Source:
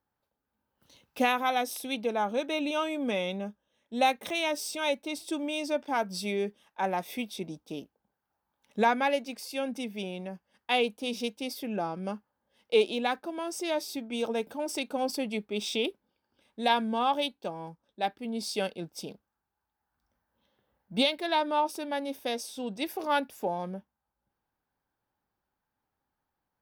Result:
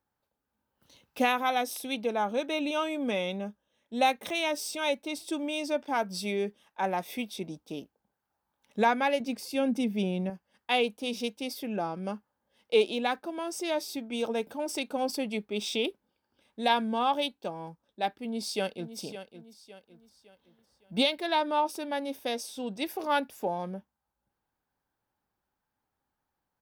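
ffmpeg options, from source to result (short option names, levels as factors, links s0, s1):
-filter_complex "[0:a]asettb=1/sr,asplit=3[s0][s1][s2];[s0]atrim=end=9.204[s3];[s1]atrim=start=9.2:end=10.3,asetpts=PTS-STARTPTS,afade=t=in:d=0.004:c=qsin,afade=t=out:st=1.096:d=0.004:c=qsin,equalizer=f=140:w=0.39:g=10[s4];[s2]atrim=start=10.296[s5];[s3][s4]acrossfade=d=0.004:c1=hsin:c2=qsin[s6];[s6][s5]acrossfade=d=0.004:c1=qsin:c2=hsin,asplit=2[s7][s8];[s8]afade=t=in:st=18.22:d=0.01,afade=t=out:st=18.97:d=0.01,aecho=0:1:560|1120|1680|2240:0.251189|0.100475|0.0401902|0.0160761[s9];[s7][s9]amix=inputs=2:normalize=0"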